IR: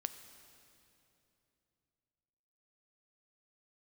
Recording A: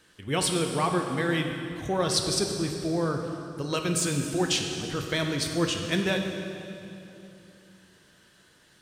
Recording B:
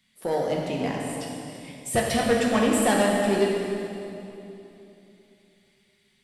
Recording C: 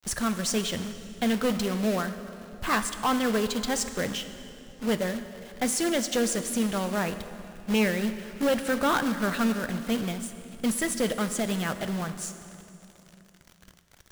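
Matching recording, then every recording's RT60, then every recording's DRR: C; 3.0 s, 3.0 s, 3.0 s; 3.0 dB, -2.0 dB, 9.5 dB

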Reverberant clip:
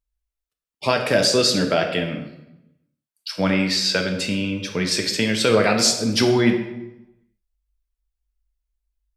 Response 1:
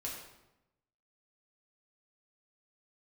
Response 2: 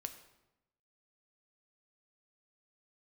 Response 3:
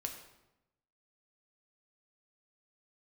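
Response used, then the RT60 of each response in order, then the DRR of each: 3; 0.95 s, 0.95 s, 0.95 s; -4.0 dB, 7.5 dB, 3.0 dB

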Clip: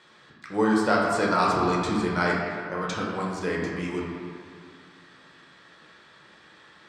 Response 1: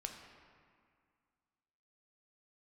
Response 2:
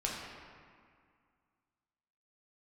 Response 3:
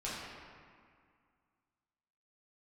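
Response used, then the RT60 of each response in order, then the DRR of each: 2; 2.1 s, 2.1 s, 2.1 s; 2.5 dB, -4.0 dB, -9.0 dB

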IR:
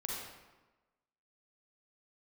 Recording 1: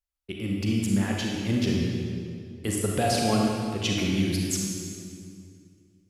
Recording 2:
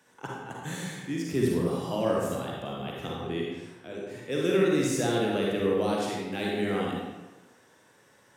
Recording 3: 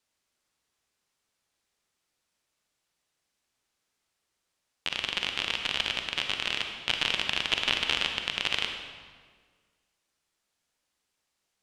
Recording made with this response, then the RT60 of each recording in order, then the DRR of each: 2; 2.4 s, 1.2 s, 1.7 s; -1.5 dB, -3.5 dB, 4.0 dB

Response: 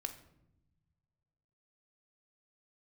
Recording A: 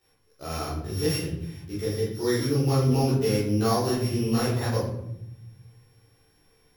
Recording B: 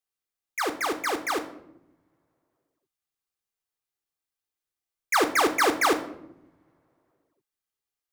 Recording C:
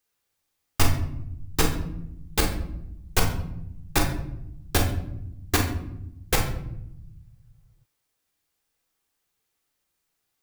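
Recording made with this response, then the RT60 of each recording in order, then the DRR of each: B; 0.80 s, no single decay rate, 0.80 s; -9.5 dB, 7.5 dB, 0.5 dB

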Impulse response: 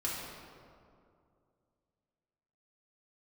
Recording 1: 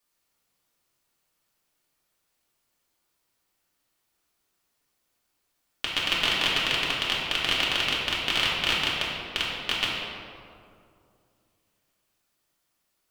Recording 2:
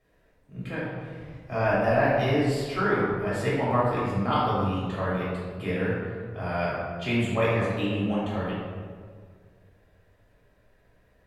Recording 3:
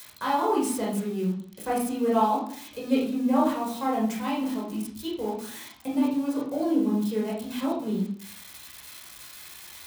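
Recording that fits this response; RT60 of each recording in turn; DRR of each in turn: 1; 2.4 s, 1.8 s, 0.55 s; -6.5 dB, -9.5 dB, -5.0 dB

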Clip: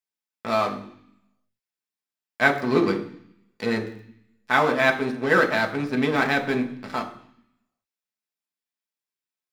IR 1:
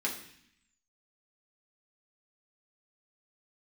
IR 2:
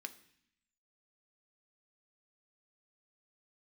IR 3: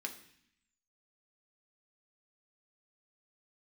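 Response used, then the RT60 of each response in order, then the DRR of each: 3; 0.65 s, 0.65 s, 0.65 s; -3.0 dB, 8.5 dB, 3.0 dB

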